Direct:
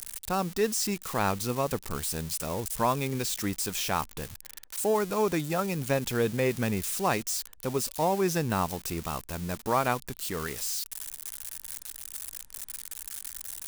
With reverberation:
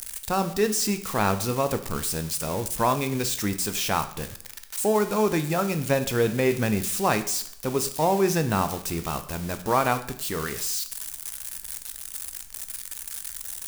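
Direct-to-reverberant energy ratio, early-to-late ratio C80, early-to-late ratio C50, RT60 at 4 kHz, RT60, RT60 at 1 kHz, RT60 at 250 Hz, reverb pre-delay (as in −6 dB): 8.5 dB, 16.0 dB, 13.0 dB, 0.60 s, 0.65 s, 0.65 s, 0.70 s, 5 ms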